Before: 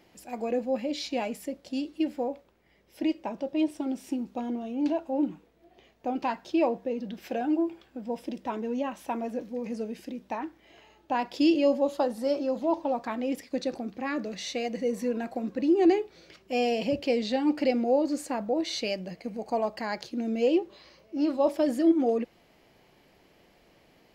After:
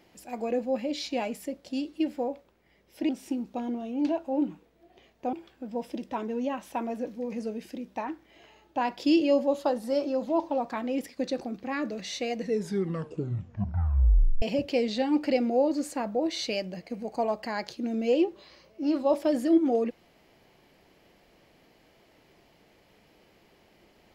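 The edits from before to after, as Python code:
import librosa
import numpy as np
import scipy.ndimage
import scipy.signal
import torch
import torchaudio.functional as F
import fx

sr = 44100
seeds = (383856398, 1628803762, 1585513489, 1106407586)

y = fx.edit(x, sr, fx.cut(start_s=3.09, length_s=0.81),
    fx.cut(start_s=6.14, length_s=1.53),
    fx.tape_stop(start_s=14.71, length_s=2.05), tone=tone)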